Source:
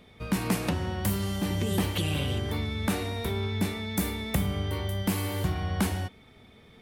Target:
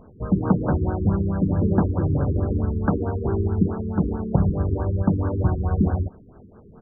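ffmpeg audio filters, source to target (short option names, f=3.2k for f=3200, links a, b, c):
-filter_complex "[0:a]acrossover=split=5500[a][b];[b]acompressor=threshold=-46dB:ratio=4:attack=1:release=60[c];[a][c]amix=inputs=2:normalize=0,asplit=3[d][e][f];[e]asetrate=22050,aresample=44100,atempo=2,volume=-15dB[g];[f]asetrate=37084,aresample=44100,atempo=1.18921,volume=-4dB[h];[d][g][h]amix=inputs=3:normalize=0,afftfilt=real='re*lt(b*sr/1024,430*pow(1700/430,0.5+0.5*sin(2*PI*4.6*pts/sr)))':imag='im*lt(b*sr/1024,430*pow(1700/430,0.5+0.5*sin(2*PI*4.6*pts/sr)))':win_size=1024:overlap=0.75,volume=6.5dB"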